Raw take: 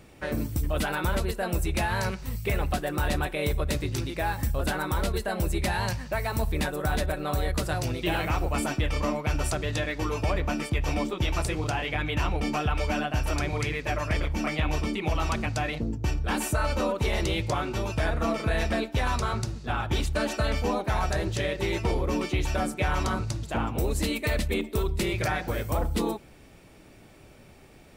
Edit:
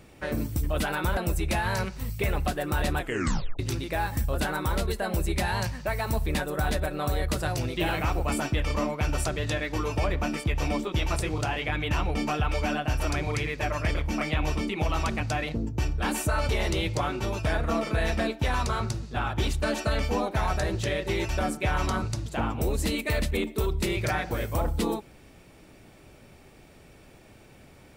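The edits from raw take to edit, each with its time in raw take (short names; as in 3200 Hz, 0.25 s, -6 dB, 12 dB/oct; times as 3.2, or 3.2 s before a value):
1.17–1.43 cut
3.25 tape stop 0.60 s
16.75–17.02 cut
21.82–22.46 cut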